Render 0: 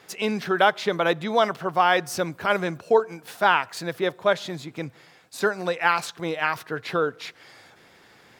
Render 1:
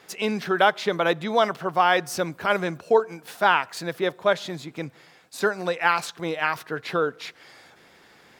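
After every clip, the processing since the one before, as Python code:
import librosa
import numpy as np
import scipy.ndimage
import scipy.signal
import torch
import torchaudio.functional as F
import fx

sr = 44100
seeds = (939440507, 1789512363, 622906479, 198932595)

y = fx.peak_eq(x, sr, hz=110.0, db=-7.0, octaves=0.33)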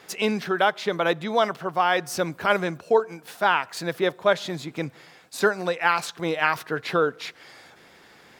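y = fx.rider(x, sr, range_db=3, speed_s=0.5)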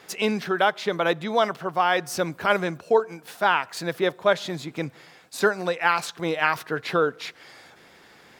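y = x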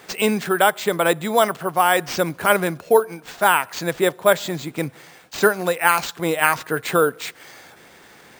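y = np.repeat(x[::4], 4)[:len(x)]
y = F.gain(torch.from_numpy(y), 4.5).numpy()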